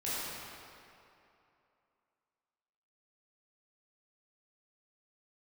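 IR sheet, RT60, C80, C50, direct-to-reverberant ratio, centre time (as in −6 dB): 2.8 s, −3.0 dB, −5.0 dB, −11.0 dB, 194 ms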